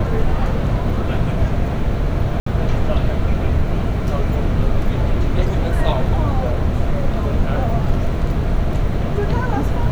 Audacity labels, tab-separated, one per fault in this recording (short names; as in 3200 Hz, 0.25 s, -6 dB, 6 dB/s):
2.400000	2.460000	gap 64 ms